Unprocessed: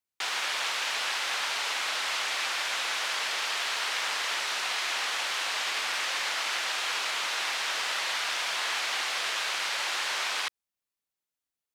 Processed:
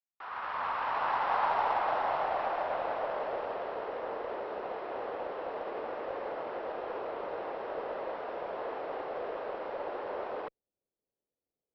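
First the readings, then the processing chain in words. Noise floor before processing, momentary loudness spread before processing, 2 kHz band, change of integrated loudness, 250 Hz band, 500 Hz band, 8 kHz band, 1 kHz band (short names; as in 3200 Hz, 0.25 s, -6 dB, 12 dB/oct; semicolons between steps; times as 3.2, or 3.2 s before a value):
under -85 dBFS, 0 LU, -13.0 dB, -6.5 dB, +8.5 dB, +9.5 dB, under -40 dB, +2.0 dB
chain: opening faded in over 1.48 s; notch 2300 Hz, Q 28; low-pass sweep 1200 Hz -> 490 Hz, 0.1–3.94; added harmonics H 4 -31 dB, 8 -37 dB, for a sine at -23 dBFS; Chebyshev low-pass 5700 Hz, order 10; gain +5.5 dB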